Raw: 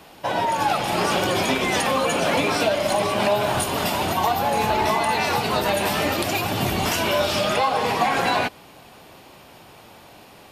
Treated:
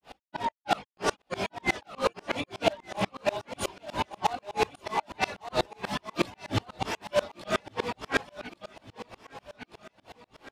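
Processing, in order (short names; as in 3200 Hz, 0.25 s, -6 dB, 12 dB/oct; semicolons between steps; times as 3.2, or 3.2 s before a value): reverb removal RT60 0.55 s; grains 0.185 s, grains 3.1/s, spray 13 ms, pitch spread up and down by 0 st; chorus voices 6, 0.59 Hz, delay 18 ms, depth 2.6 ms; in parallel at -8.5 dB: wrapped overs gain 23.5 dB; on the sum: air absorption 57 m; on a send: feedback echo 1.162 s, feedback 45%, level -16 dB; on the sum: dB-ramp tremolo swelling 8.2 Hz, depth 30 dB; gain +8 dB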